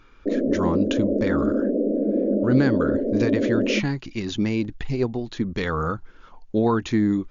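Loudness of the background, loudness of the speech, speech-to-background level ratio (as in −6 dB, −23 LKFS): −23.5 LKFS, −25.5 LKFS, −2.0 dB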